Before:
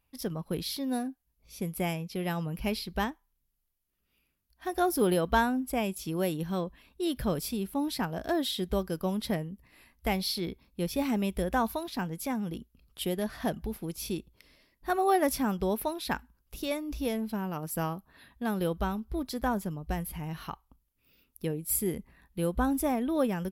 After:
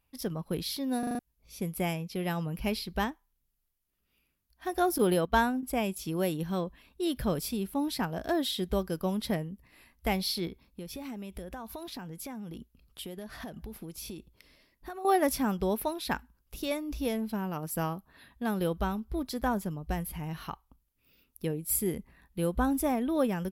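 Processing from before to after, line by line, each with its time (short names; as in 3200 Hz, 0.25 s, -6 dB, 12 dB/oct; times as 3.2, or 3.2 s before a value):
0.99 stutter in place 0.04 s, 5 plays
4.98–5.63 gate -30 dBFS, range -11 dB
10.47–15.05 compressor 8:1, threshold -37 dBFS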